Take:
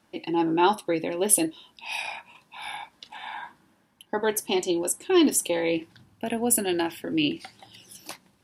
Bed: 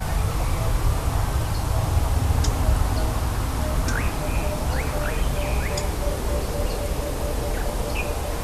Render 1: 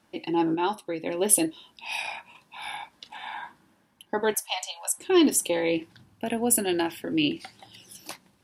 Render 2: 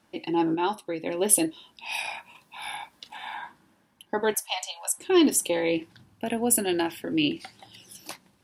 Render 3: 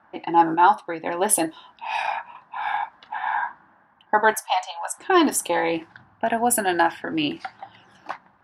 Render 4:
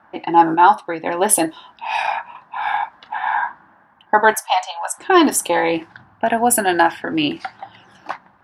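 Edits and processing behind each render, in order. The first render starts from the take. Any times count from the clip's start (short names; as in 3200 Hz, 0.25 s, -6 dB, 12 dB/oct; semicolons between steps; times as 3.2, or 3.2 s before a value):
0.55–1.06 gain -6 dB; 4.34–4.98 steep high-pass 610 Hz 96 dB/oct
1.94–3.36 high shelf 12000 Hz +11 dB
low-pass opened by the level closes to 2100 Hz, open at -20.5 dBFS; band shelf 1100 Hz +13 dB
gain +5 dB; limiter -1 dBFS, peak gain reduction 1 dB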